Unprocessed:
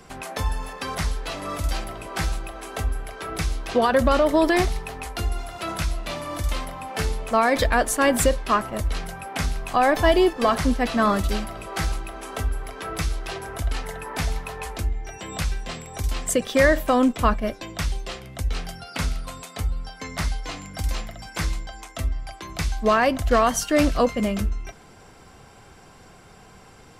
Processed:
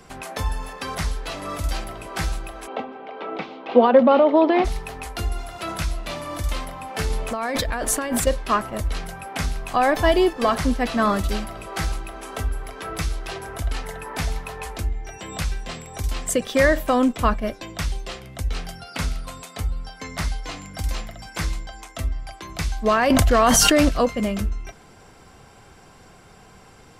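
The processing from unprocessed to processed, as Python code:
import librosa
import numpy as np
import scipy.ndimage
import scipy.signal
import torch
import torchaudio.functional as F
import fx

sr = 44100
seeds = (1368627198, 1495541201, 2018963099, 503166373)

y = fx.cabinet(x, sr, low_hz=220.0, low_slope=24, high_hz=3300.0, hz=(240.0, 510.0, 830.0, 1700.0), db=(9, 7, 7, -7), at=(2.66, 4.64), fade=0.02)
y = fx.over_compress(y, sr, threshold_db=-24.0, ratio=-1.0, at=(7.1, 8.27))
y = fx.env_flatten(y, sr, amount_pct=100, at=(23.1, 23.89))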